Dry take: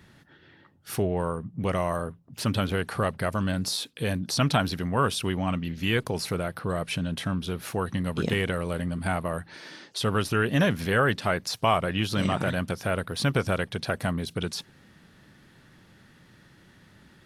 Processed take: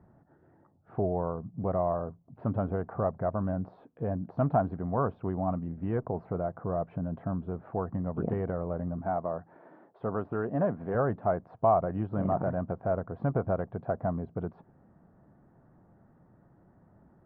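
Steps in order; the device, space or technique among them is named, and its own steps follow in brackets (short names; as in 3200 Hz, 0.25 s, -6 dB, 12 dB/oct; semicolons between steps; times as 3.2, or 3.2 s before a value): under water (LPF 1100 Hz 24 dB/oct; bell 690 Hz +8.5 dB 0.32 oct); 9.01–10.95 HPF 200 Hz 6 dB/oct; gain -4 dB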